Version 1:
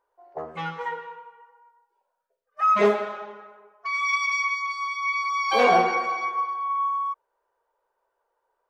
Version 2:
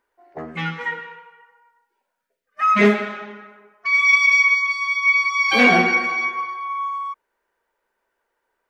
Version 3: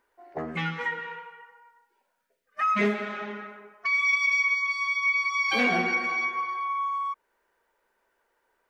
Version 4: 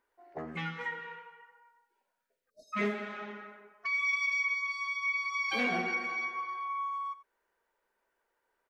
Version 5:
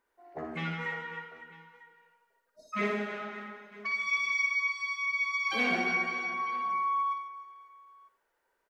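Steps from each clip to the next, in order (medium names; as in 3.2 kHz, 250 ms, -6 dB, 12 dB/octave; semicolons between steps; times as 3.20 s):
graphic EQ 250/500/1000/2000 Hz +11/-8/-8/+8 dB; trim +5.5 dB
compression 2:1, threshold -33 dBFS, peak gain reduction 13 dB; trim +2 dB
delay 89 ms -16.5 dB; spectral selection erased 2.50–2.73 s, 680–3700 Hz; trim -7 dB
reverse bouncing-ball echo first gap 60 ms, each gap 1.6×, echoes 5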